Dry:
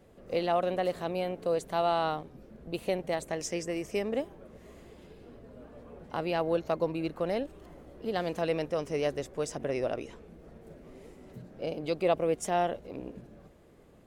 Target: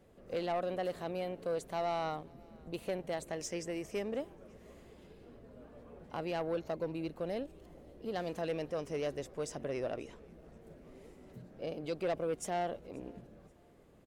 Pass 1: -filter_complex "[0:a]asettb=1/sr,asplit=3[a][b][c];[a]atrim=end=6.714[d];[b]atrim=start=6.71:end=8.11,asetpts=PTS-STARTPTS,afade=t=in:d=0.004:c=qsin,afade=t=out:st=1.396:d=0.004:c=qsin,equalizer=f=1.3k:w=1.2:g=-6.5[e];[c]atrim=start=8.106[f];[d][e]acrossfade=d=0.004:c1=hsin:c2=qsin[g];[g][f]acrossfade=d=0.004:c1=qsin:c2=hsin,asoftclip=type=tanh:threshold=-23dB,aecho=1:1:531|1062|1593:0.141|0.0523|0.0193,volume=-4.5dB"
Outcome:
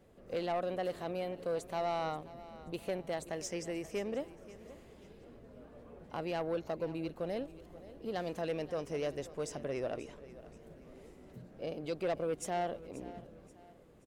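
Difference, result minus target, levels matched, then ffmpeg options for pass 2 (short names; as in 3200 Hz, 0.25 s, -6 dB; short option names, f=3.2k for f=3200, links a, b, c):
echo-to-direct +10.5 dB
-filter_complex "[0:a]asettb=1/sr,asplit=3[a][b][c];[a]atrim=end=6.714[d];[b]atrim=start=6.71:end=8.11,asetpts=PTS-STARTPTS,afade=t=in:d=0.004:c=qsin,afade=t=out:st=1.396:d=0.004:c=qsin,equalizer=f=1.3k:w=1.2:g=-6.5[e];[c]atrim=start=8.106[f];[d][e]acrossfade=d=0.004:c1=hsin:c2=qsin[g];[g][f]acrossfade=d=0.004:c1=qsin:c2=hsin,asoftclip=type=tanh:threshold=-23dB,aecho=1:1:531|1062:0.0422|0.0156,volume=-4.5dB"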